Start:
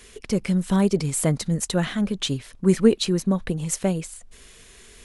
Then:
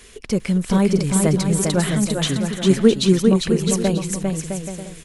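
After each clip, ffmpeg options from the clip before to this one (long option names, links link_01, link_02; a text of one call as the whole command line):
ffmpeg -i in.wav -af "aecho=1:1:400|660|829|938.8|1010:0.631|0.398|0.251|0.158|0.1,volume=2.5dB" out.wav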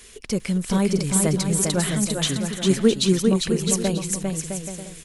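ffmpeg -i in.wav -af "highshelf=frequency=3400:gain=6.5,volume=-4dB" out.wav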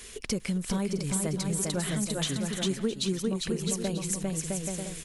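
ffmpeg -i in.wav -af "acompressor=threshold=-29dB:ratio=4,volume=1dB" out.wav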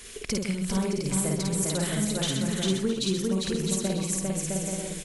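ffmpeg -i in.wav -af "aecho=1:1:52.48|128.3:0.794|0.398" out.wav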